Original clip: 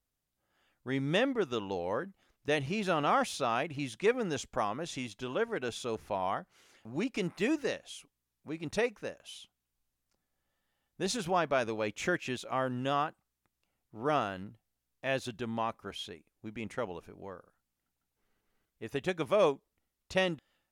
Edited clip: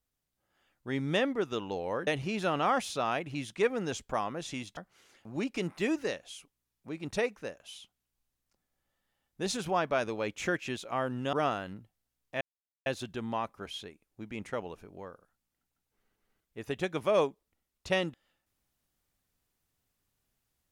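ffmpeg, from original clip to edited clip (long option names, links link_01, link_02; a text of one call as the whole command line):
ffmpeg -i in.wav -filter_complex "[0:a]asplit=5[link_01][link_02][link_03][link_04][link_05];[link_01]atrim=end=2.072[link_06];[link_02]atrim=start=2.508:end=5.212[link_07];[link_03]atrim=start=6.368:end=12.932[link_08];[link_04]atrim=start=14.028:end=15.11,asetpts=PTS-STARTPTS,afade=type=out:start_time=1.078:duration=0.004:curve=hsin,apad=pad_dur=0.45[link_09];[link_05]atrim=start=15.11,asetpts=PTS-STARTPTS,afade=type=in:duration=0.004:curve=hsin[link_10];[link_06][link_07]acrossfade=duration=0.004:curve1=hsin:curve2=hsin[link_11];[link_11][link_08]acrossfade=duration=0.004:curve1=hsin:curve2=hsin[link_12];[link_09][link_10]concat=n=2:v=0:a=1[link_13];[link_12][link_13]acrossfade=duration=0.004:curve1=hsin:curve2=hsin" out.wav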